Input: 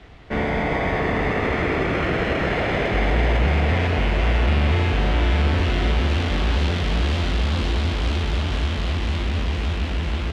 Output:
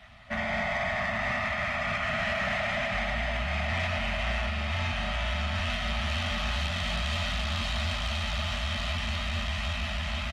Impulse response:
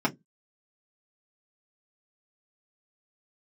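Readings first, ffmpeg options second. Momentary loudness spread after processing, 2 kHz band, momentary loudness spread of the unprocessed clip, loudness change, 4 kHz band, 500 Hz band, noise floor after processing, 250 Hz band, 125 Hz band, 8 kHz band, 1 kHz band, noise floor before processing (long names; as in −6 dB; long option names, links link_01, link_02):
3 LU, −3.5 dB, 5 LU, −7.5 dB, −2.0 dB, −10.0 dB, −32 dBFS, −13.0 dB, −11.5 dB, can't be measured, −6.5 dB, −25 dBFS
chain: -filter_complex "[0:a]asplit=2[link_01][link_02];[1:a]atrim=start_sample=2205[link_03];[link_02][link_03]afir=irnorm=-1:irlink=0,volume=-20.5dB[link_04];[link_01][link_04]amix=inputs=2:normalize=0,alimiter=limit=-12.5dB:level=0:latency=1:release=247,lowshelf=frequency=65:gain=-11.5,aresample=32000,aresample=44100,acrossover=split=1300[link_05][link_06];[link_05]bandreject=frequency=152.2:width_type=h:width=4,bandreject=frequency=304.4:width_type=h:width=4[link_07];[link_06]acontrast=74[link_08];[link_07][link_08]amix=inputs=2:normalize=0,lowshelf=frequency=150:gain=2.5,aecho=1:1:1.6:0.36,afftfilt=real='re*(1-between(b*sr/4096,250,560))':imag='im*(1-between(b*sr/4096,250,560))':win_size=4096:overlap=0.75,asoftclip=type=tanh:threshold=-14dB,volume=-7dB" -ar 48000 -c:a libopus -b:a 32k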